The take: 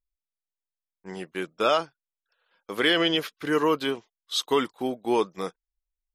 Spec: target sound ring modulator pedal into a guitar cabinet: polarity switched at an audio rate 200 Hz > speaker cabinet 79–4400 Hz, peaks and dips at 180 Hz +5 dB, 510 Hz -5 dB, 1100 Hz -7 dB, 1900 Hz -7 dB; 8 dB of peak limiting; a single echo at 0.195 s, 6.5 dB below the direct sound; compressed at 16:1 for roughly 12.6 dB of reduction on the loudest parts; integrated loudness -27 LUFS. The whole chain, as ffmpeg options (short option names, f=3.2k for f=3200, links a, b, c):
-af "acompressor=threshold=-30dB:ratio=16,alimiter=level_in=1.5dB:limit=-24dB:level=0:latency=1,volume=-1.5dB,aecho=1:1:195:0.473,aeval=exprs='val(0)*sgn(sin(2*PI*200*n/s))':c=same,highpass=79,equalizer=f=180:t=q:w=4:g=5,equalizer=f=510:t=q:w=4:g=-5,equalizer=f=1.1k:t=q:w=4:g=-7,equalizer=f=1.9k:t=q:w=4:g=-7,lowpass=f=4.4k:w=0.5412,lowpass=f=4.4k:w=1.3066,volume=11.5dB"